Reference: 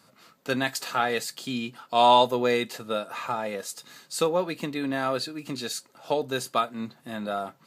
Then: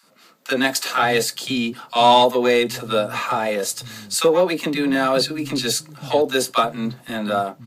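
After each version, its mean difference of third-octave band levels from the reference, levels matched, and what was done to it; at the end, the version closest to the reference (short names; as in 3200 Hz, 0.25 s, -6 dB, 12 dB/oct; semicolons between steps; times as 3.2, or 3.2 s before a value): 4.5 dB: AGC gain up to 7.5 dB; in parallel at -5 dB: soft clip -16.5 dBFS, distortion -8 dB; on the sum: three bands offset in time highs, mids, lows 30/530 ms, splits 160/970 Hz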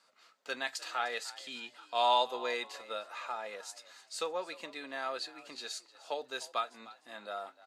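6.5 dB: BPF 610–7500 Hz; bell 940 Hz -2 dB 1.5 oct; frequency-shifting echo 0.303 s, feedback 31%, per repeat +62 Hz, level -18.5 dB; gain -6.5 dB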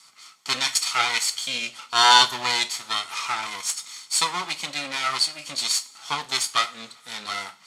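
9.5 dB: minimum comb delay 0.9 ms; weighting filter ITU-R 468; two-slope reverb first 0.31 s, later 1.9 s, from -21 dB, DRR 9 dB; gain +1.5 dB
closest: first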